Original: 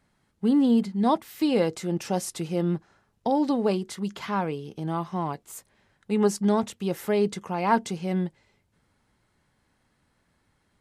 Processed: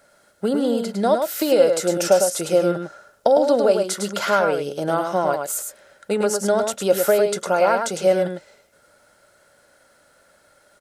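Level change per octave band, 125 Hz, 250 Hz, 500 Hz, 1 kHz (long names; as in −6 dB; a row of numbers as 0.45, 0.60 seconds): −2.0, −1.0, +11.0, +5.5 decibels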